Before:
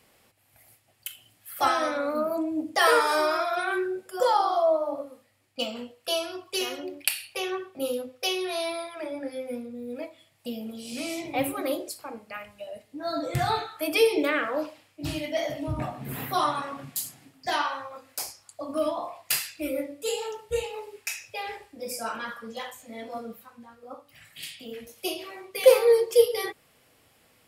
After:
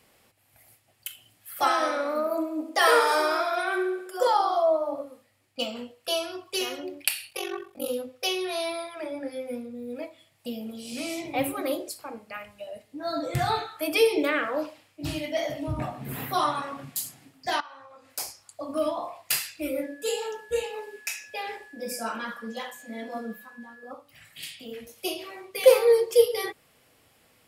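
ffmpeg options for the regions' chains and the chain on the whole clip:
-filter_complex "[0:a]asettb=1/sr,asplit=3[s0][s1][s2];[s0]atrim=end=1.644[s3];[s1]atrim=start=1.64:end=4.27,asetpts=PTS-STARTPTS,afade=t=in:d=0.004:c=qsin,afade=t=out:st=2.626:d=0.004:c=qsin,highpass=f=270:w=0.5412,highpass=f=270:w=1.3066,aecho=1:1:68|136|204|272|340|408|476:0.316|0.183|0.106|0.0617|0.0358|0.0208|0.012,atrim=end_sample=115983[s4];[s2]atrim=start=4.266[s5];[s3][s4]acrossfade=d=0.004:c1=hsin:c2=qsin[s6];[s6][s5]acrossfade=d=0.004:c1=qsin:c2=hsin,asettb=1/sr,asplit=3[s7][s8][s9];[s7]atrim=end=7.294[s10];[s8]atrim=start=7.29:end=7.88,asetpts=PTS-STARTPTS,afade=t=in:d=0.004:c=qsin,afade=t=out:st=0.586:d=0.004:c=qsin,equalizer=f=14000:w=0.48:g=7,aeval=exprs='val(0)*sin(2*PI*23*n/s)':c=same[s11];[s9]atrim=start=7.876[s12];[s10][s11]acrossfade=d=0.004:c1=hsin:c2=qsin[s13];[s13][s12]acrossfade=d=0.004:c1=qsin:c2=hsin,asettb=1/sr,asplit=3[s14][s15][s16];[s14]atrim=end=17.604[s17];[s15]atrim=start=17.6:end=18.1,asetpts=PTS-STARTPTS,afade=t=in:d=0.004:c=qsin,afade=t=out:st=0.496:d=0.004:c=qsin,lowpass=10000,acompressor=threshold=0.00316:ratio=2.5:attack=3.2:release=140:knee=1:detection=peak[s18];[s16]atrim=start=18.096[s19];[s17][s18]acrossfade=d=0.004:c1=hsin:c2=qsin[s20];[s20][s19]acrossfade=d=0.004:c1=qsin:c2=hsin,asettb=1/sr,asplit=3[s21][s22][s23];[s21]atrim=end=19.834[s24];[s22]atrim=start=19.83:end=23.91,asetpts=PTS-STARTPTS,afade=t=in:d=0.004:c=qsin,afade=t=out:st=4.076:d=0.004:c=qsin,aeval=exprs='val(0)+0.00398*sin(2*PI*1700*n/s)':c=same,lowshelf=f=160:t=q:w=3:g=-6.5[s25];[s23]atrim=start=23.906[s26];[s24][s25]acrossfade=d=0.004:c1=hsin:c2=qsin[s27];[s27][s26]acrossfade=d=0.004:c1=qsin:c2=hsin"

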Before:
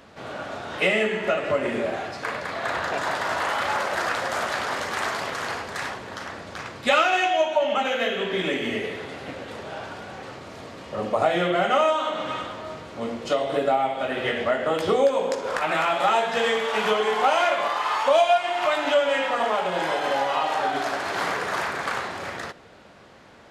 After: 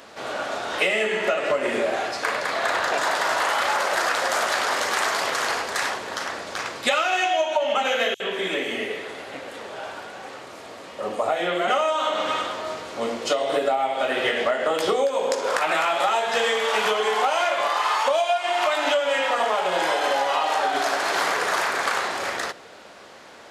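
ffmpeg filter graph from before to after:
-filter_complex "[0:a]asettb=1/sr,asplit=3[s0][s1][s2];[s0]atrim=end=8.144[s3];[s1]atrim=start=8.14:end=11.68,asetpts=PTS-STARTPTS,afade=t=in:d=0.004:c=qsin,afade=t=out:st=3.536:d=0.004:c=qsin,acrossover=split=5200[s4][s5];[s4]adelay=60[s6];[s6][s5]amix=inputs=2:normalize=0,atrim=end_sample=156114,flanger=delay=3.3:depth=7.7:regen=81:speed=1.4:shape=triangular[s7];[s2]atrim=start=11.676[s8];[s3][s7]acrossfade=d=0.004:c1=hsin:c2=qsin[s9];[s9][s8]acrossfade=d=0.004:c1=qsin:c2=hsin,bass=f=250:g=-12,treble=f=4000:g=5,bandreject=f=50:t=h:w=6,bandreject=f=100:t=h:w=6,bandreject=f=150:t=h:w=6,acompressor=threshold=0.0631:ratio=6,volume=1.88"

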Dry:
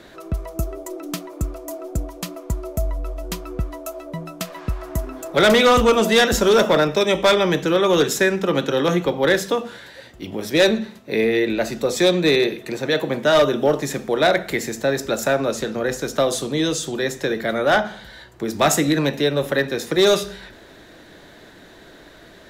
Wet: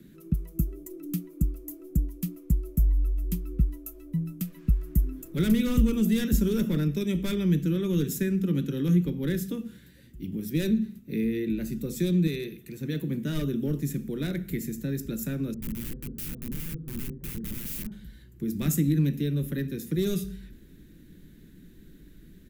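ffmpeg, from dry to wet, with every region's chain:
-filter_complex "[0:a]asettb=1/sr,asplit=3[s0][s1][s2];[s0]atrim=end=12.274[s3];[s1]atrim=start=12.27:end=12.81,asetpts=PTS-STARTPTS,afade=t=in:d=0.004:c=qsin,afade=t=out:st=0.536:d=0.004:c=qsin,highpass=56,equalizer=f=230:w=0.78:g=-8[s4];[s2]atrim=start=12.806[s5];[s3][s4]acrossfade=d=0.004:c1=hsin:c2=qsin[s6];[s6][s5]acrossfade=d=0.004:c1=qsin:c2=hsin,asettb=1/sr,asplit=3[s7][s8][s9];[s7]atrim=end=15.544[s10];[s8]atrim=start=15.54:end=17.92,asetpts=PTS-STARTPTS,afade=t=in:d=0.004:c=qsin,afade=t=out:st=2.376:d=0.004:c=qsin,lowpass=f=1000:w=0.5412,lowpass=f=1000:w=1.3066,aeval=exprs='(mod(14.1*val(0)+1,2)-1)/14.1':c=same[s11];[s9]atrim=start=17.916[s12];[s10][s11]acrossfade=d=0.004:c1=hsin:c2=qsin[s13];[s13][s12]acrossfade=d=0.004:c1=qsin:c2=hsin,firequalizer=gain_entry='entry(110,0);entry(160,12);entry(670,-28);entry(1500,-16);entry(2500,-11);entry(4100,-14);entry(13000,5)':delay=0.05:min_phase=1,acrossover=split=250[s14][s15];[s15]acompressor=threshold=0.112:ratio=6[s16];[s14][s16]amix=inputs=2:normalize=0,asubboost=boost=4:cutoff=74,volume=0.531"

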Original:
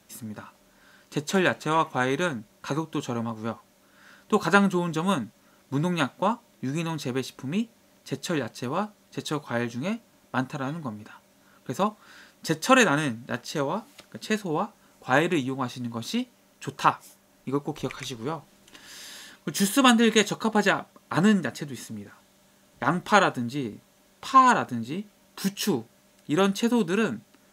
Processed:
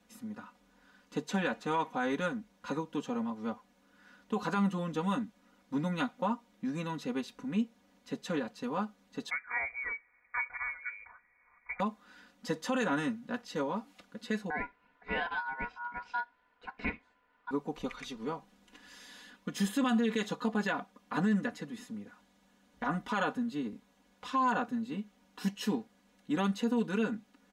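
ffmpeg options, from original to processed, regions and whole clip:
-filter_complex "[0:a]asettb=1/sr,asplit=3[s0][s1][s2];[s0]atrim=end=9.304[s3];[s1]atrim=start=9.3:end=11.8,asetpts=PTS-STARTPTS,afade=t=in:d=0.004:c=qsin,afade=t=out:st=2.496:d=0.004:c=qsin,lowpass=f=2100:t=q:w=0.5098,lowpass=f=2100:t=q:w=0.6013,lowpass=f=2100:t=q:w=0.9,lowpass=f=2100:t=q:w=2.563,afreqshift=-2500,asubboost=boost=7:cutoff=130[s4];[s2]atrim=start=11.796[s5];[s3][s4]acrossfade=d=0.004:c1=hsin:c2=qsin[s6];[s6][s5]acrossfade=d=0.004:c1=qsin:c2=hsin,asettb=1/sr,asplit=3[s7][s8][s9];[s7]atrim=end=14.504[s10];[s8]atrim=start=14.5:end=17.51,asetpts=PTS-STARTPTS,afade=t=in:d=0.004:c=qsin,afade=t=out:st=3.006:d=0.004:c=qsin,lowpass=2200,aeval=exprs='val(0)*sin(2*PI*1200*n/s)':c=same[s11];[s9]atrim=start=17.506[s12];[s10][s11]acrossfade=d=0.004:c1=hsin:c2=qsin[s13];[s13][s12]acrossfade=d=0.004:c1=qsin:c2=hsin,lowpass=f=3100:p=1,aecho=1:1:4.1:0.96,alimiter=limit=0.224:level=0:latency=1:release=36,volume=0.376"

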